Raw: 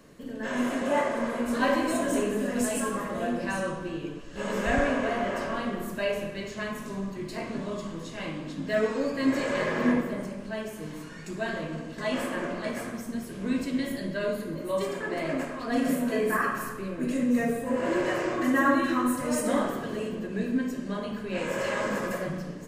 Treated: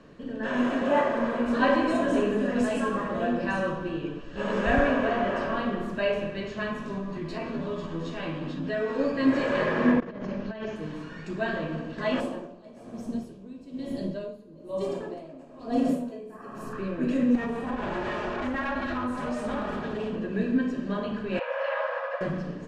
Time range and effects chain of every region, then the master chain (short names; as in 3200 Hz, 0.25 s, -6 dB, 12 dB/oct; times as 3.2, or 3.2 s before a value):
6.98–8.99 compressor 2:1, threshold -34 dBFS + doubler 12 ms -2.5 dB
10–10.76 steep low-pass 6900 Hz 72 dB/oct + negative-ratio compressor -36 dBFS, ratio -0.5
12.2–16.73 EQ curve 770 Hz 0 dB, 1700 Hz -14 dB, 2500 Hz -7 dB, 12000 Hz +9 dB + dB-linear tremolo 1.1 Hz, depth 18 dB
17.35–20.16 minimum comb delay 4.8 ms + compressor 4:1, threshold -29 dBFS
21.39–22.21 brick-wall FIR high-pass 480 Hz + air absorption 270 m
whole clip: LPF 3600 Hz 12 dB/oct; notch 2100 Hz, Q 10; gain +2.5 dB